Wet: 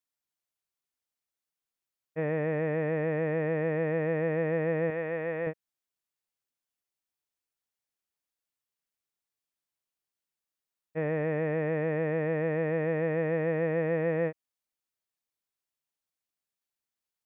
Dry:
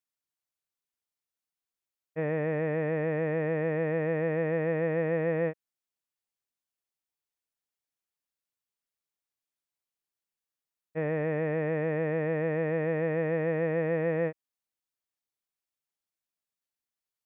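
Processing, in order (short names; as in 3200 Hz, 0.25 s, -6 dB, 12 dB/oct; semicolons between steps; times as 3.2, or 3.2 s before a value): 4.9–5.47 low shelf 420 Hz -10 dB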